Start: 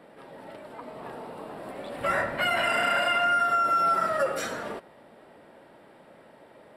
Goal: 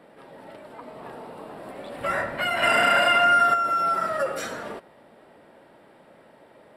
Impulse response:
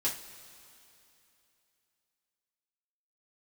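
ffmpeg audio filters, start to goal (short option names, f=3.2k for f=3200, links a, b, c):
-filter_complex "[0:a]asettb=1/sr,asplit=3[a][b][c];[a]atrim=end=2.624[d];[b]atrim=start=2.62:end=3.54,asetpts=PTS-STARTPTS,afade=t=in:d=0.004:c=qsin,afade=t=out:st=0.916:d=0.004:c=qsin,acontrast=43[e];[c]atrim=start=3.536[f];[d][e]acrossfade=d=0.004:c1=hsin:c2=qsin[g];[g][f]acrossfade=d=0.004:c1=qsin:c2=hsin"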